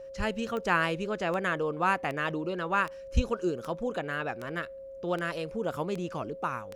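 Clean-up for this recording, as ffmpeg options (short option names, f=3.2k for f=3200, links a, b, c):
-af "adeclick=t=4,bandreject=f=540:w=30"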